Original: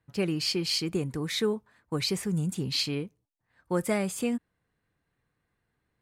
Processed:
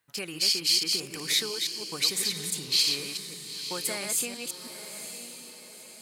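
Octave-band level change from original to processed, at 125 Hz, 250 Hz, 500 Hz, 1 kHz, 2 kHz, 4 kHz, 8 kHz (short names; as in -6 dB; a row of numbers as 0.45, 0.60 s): -13.5, -11.5, -8.0, -3.0, +3.0, +7.0, +10.0 dB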